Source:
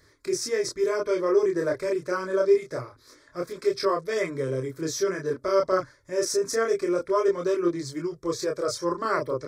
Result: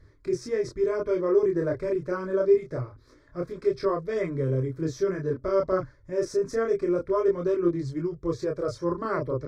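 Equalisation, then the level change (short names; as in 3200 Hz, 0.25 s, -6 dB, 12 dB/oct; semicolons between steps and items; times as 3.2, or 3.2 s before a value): RIAA curve playback; -4.0 dB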